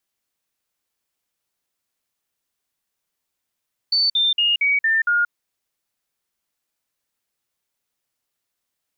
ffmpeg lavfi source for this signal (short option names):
-f lavfi -i "aevalsrc='0.178*clip(min(mod(t,0.23),0.18-mod(t,0.23))/0.005,0,1)*sin(2*PI*4520*pow(2,-floor(t/0.23)/3)*mod(t,0.23))':d=1.38:s=44100"